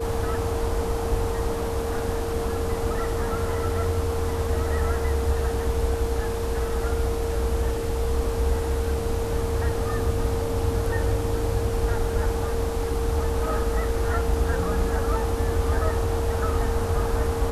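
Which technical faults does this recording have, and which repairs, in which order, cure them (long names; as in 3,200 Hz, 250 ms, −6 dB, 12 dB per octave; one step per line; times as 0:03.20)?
whistle 460 Hz −28 dBFS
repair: notch filter 460 Hz, Q 30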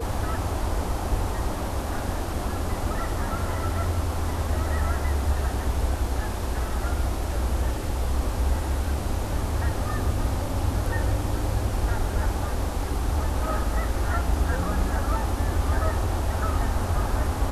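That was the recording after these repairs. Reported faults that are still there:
none of them is left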